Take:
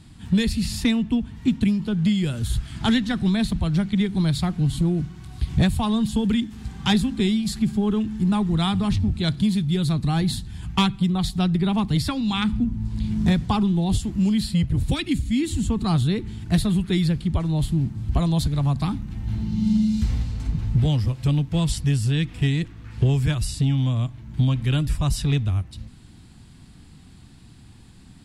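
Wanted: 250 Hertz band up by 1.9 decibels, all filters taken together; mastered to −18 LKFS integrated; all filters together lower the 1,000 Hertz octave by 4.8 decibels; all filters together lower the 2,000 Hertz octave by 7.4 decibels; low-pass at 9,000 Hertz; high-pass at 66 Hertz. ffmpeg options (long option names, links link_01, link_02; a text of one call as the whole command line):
ffmpeg -i in.wav -af "highpass=66,lowpass=9000,equalizer=frequency=250:width_type=o:gain=3,equalizer=frequency=1000:width_type=o:gain=-4.5,equalizer=frequency=2000:width_type=o:gain=-8.5,volume=4dB" out.wav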